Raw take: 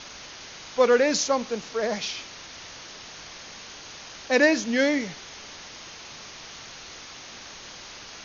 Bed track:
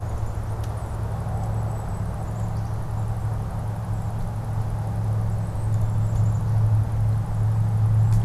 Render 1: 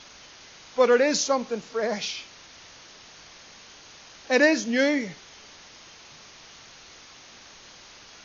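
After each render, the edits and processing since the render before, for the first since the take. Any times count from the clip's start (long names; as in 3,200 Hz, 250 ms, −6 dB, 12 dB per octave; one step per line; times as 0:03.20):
noise reduction from a noise print 6 dB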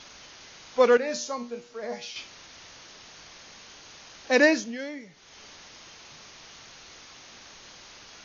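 0:00.97–0:02.16: tuned comb filter 120 Hz, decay 0.32 s, mix 80%
0:04.48–0:05.42: duck −14 dB, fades 0.30 s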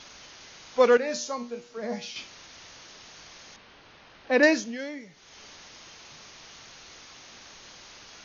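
0:01.77–0:02.25: parametric band 200 Hz +9.5 dB
0:03.56–0:04.43: high-frequency loss of the air 260 metres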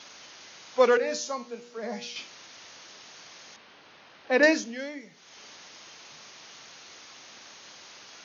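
Bessel high-pass filter 180 Hz, order 2
mains-hum notches 60/120/180/240/300/360/420/480 Hz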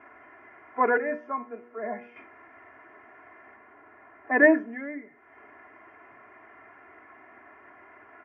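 elliptic low-pass filter 2,000 Hz, stop band 50 dB
comb filter 2.9 ms, depth 93%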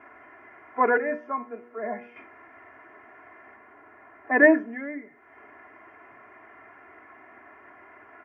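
level +1.5 dB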